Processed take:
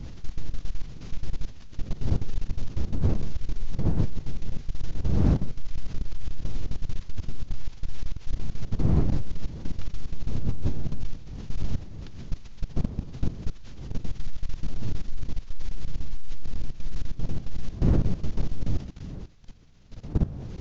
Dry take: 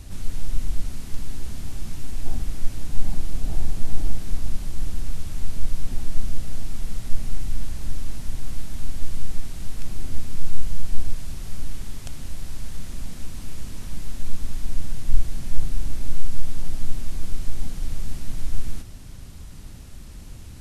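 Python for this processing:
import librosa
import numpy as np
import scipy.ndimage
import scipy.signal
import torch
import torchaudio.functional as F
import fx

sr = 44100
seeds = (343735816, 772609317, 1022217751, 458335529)

y = fx.pitch_heads(x, sr, semitones=-11.0)
y = fx.dmg_wind(y, sr, seeds[0], corner_hz=140.0, level_db=-25.0)
y = fx.level_steps(y, sr, step_db=18)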